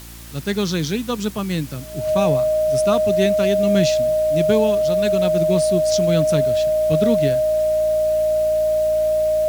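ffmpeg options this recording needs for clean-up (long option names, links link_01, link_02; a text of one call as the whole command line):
ffmpeg -i in.wav -af "bandreject=frequency=57.4:width_type=h:width=4,bandreject=frequency=114.8:width_type=h:width=4,bandreject=frequency=172.2:width_type=h:width=4,bandreject=frequency=229.6:width_type=h:width=4,bandreject=frequency=287:width_type=h:width=4,bandreject=frequency=344.4:width_type=h:width=4,bandreject=frequency=620:width=30,afwtdn=0.0089" out.wav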